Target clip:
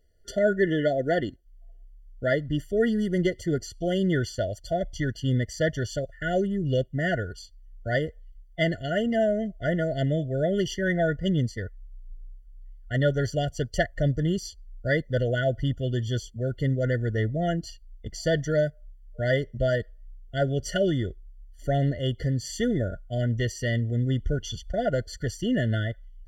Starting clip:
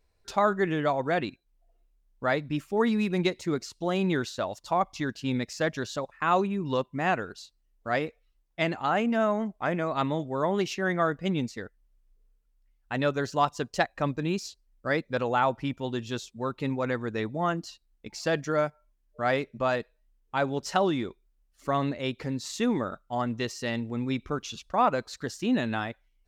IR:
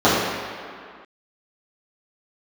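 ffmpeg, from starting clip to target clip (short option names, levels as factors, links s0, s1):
-af "asuperstop=centerf=1600:order=4:qfactor=7.3,asubboost=boost=10:cutoff=77,afftfilt=real='re*eq(mod(floor(b*sr/1024/700),2),0)':imag='im*eq(mod(floor(b*sr/1024/700),2),0)':win_size=1024:overlap=0.75,volume=1.68"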